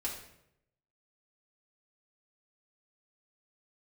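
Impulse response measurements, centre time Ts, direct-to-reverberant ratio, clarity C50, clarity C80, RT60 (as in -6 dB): 31 ms, -5.5 dB, 5.5 dB, 8.5 dB, 0.80 s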